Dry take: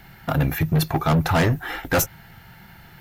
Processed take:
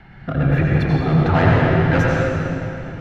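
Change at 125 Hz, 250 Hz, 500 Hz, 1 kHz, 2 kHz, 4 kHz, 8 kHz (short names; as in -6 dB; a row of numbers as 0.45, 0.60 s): +6.5 dB, +6.0 dB, +6.5 dB, +3.5 dB, +5.0 dB, -2.5 dB, under -10 dB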